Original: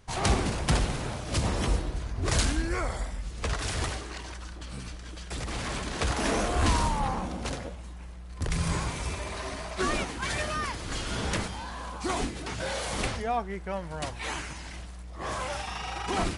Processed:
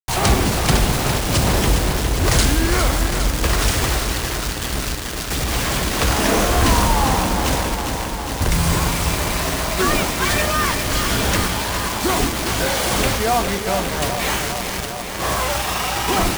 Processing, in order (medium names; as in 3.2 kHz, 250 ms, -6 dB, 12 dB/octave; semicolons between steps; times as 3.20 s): in parallel at 0 dB: peak limiter -22 dBFS, peak gain reduction 8 dB; on the sum: bit crusher 5-bit; de-hum 78.35 Hz, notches 34; bit-crushed delay 407 ms, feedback 80%, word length 8-bit, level -8 dB; trim +5.5 dB